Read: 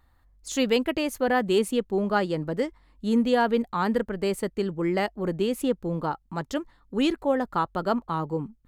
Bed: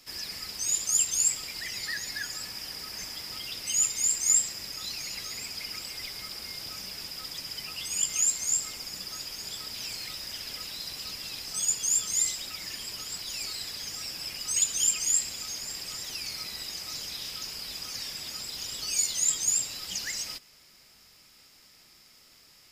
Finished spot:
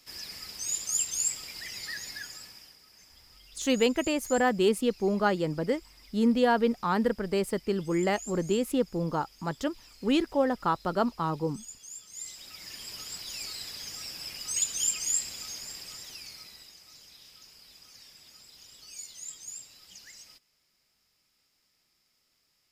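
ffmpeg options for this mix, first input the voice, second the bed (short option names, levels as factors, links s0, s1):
-filter_complex "[0:a]adelay=3100,volume=0.841[s0];[1:a]volume=3.76,afade=t=out:st=2.05:d=0.73:silence=0.188365,afade=t=in:st=12.11:d=0.86:silence=0.16788,afade=t=out:st=15.45:d=1.32:silence=0.223872[s1];[s0][s1]amix=inputs=2:normalize=0"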